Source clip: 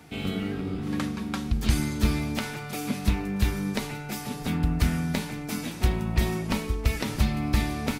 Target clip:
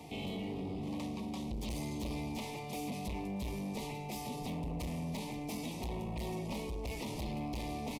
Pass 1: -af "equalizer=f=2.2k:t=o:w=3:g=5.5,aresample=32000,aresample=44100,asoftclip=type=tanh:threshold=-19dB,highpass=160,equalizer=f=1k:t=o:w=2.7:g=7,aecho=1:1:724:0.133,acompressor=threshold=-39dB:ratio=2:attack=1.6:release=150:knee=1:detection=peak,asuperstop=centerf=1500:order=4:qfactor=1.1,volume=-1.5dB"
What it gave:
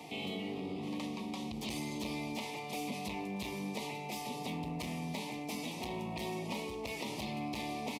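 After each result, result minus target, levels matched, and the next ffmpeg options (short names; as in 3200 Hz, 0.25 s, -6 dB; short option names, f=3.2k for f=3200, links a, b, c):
2000 Hz band +4.5 dB; 125 Hz band -4.0 dB; soft clip: distortion -6 dB
-af "aresample=32000,aresample=44100,asoftclip=type=tanh:threshold=-19dB,highpass=160,equalizer=f=1k:t=o:w=2.7:g=7,aecho=1:1:724:0.133,acompressor=threshold=-39dB:ratio=2:attack=1.6:release=150:knee=1:detection=peak,asuperstop=centerf=1500:order=4:qfactor=1.1,volume=-1.5dB"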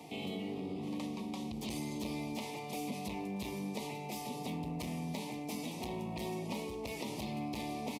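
soft clip: distortion -7 dB; 125 Hz band -3.0 dB
-af "aresample=32000,aresample=44100,asoftclip=type=tanh:threshold=-27.5dB,highpass=160,equalizer=f=1k:t=o:w=2.7:g=7,aecho=1:1:724:0.133,acompressor=threshold=-39dB:ratio=2:attack=1.6:release=150:knee=1:detection=peak,asuperstop=centerf=1500:order=4:qfactor=1.1,volume=-1.5dB"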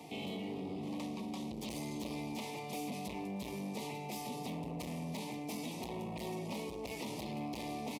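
125 Hz band -3.0 dB
-af "aresample=32000,aresample=44100,asoftclip=type=tanh:threshold=-27.5dB,equalizer=f=1k:t=o:w=2.7:g=7,aecho=1:1:724:0.133,acompressor=threshold=-39dB:ratio=2:attack=1.6:release=150:knee=1:detection=peak,asuperstop=centerf=1500:order=4:qfactor=1.1,volume=-1.5dB"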